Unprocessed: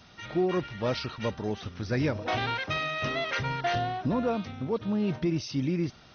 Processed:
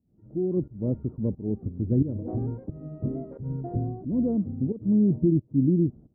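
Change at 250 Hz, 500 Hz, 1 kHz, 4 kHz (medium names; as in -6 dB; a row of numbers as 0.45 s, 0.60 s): +6.0 dB, -1.5 dB, -16.0 dB, under -40 dB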